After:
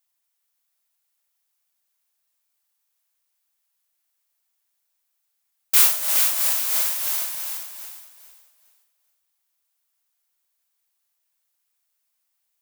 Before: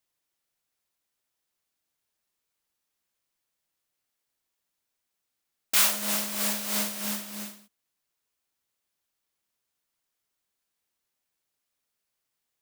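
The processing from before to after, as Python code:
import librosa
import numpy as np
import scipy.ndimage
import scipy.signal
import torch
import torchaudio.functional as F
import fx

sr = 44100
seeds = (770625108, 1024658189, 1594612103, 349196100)

p1 = scipy.signal.sosfilt(scipy.signal.butter(4, 610.0, 'highpass', fs=sr, output='sos'), x)
p2 = fx.high_shelf(p1, sr, hz=8800.0, db=9.5)
y = p2 + fx.echo_feedback(p2, sr, ms=418, feedback_pct=27, wet_db=-5.5, dry=0)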